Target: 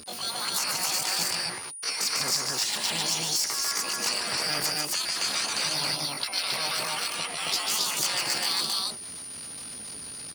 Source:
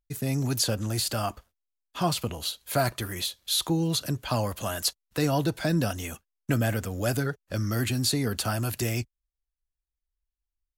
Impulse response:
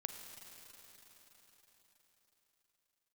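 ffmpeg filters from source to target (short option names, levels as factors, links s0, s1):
-filter_complex "[0:a]aeval=exprs='val(0)+0.5*0.0112*sgn(val(0))':c=same,highpass=190,aemphasis=mode=reproduction:type=75kf,afftfilt=real='re*lt(hypot(re,im),0.0562)':imag='im*lt(hypot(re,im),0.0562)':win_size=1024:overlap=0.75,equalizer=f=2800:w=2.6:g=11,asplit=2[s0][s1];[s1]acompressor=threshold=0.00501:ratio=8,volume=0.794[s2];[s0][s2]amix=inputs=2:normalize=0,asoftclip=type=hard:threshold=0.126,asetrate=72056,aresample=44100,atempo=0.612027,aeval=exprs='val(0)+0.00282*sin(2*PI*9200*n/s)':c=same,asetrate=45938,aresample=44100,aecho=1:1:145.8|227.4|271.1:0.631|0.282|0.891,volume=1.88"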